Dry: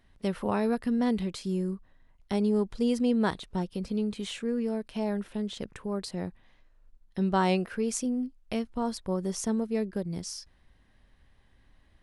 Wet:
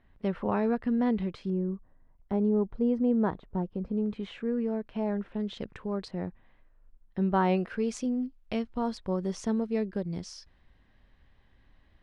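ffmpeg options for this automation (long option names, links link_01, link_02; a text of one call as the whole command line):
ffmpeg -i in.wav -af "asetnsamples=nb_out_samples=441:pad=0,asendcmd='1.5 lowpass f 1100;4.06 lowpass f 2000;5.4 lowpass f 3600;6.08 lowpass f 2100;7.57 lowpass f 4300',lowpass=2300" out.wav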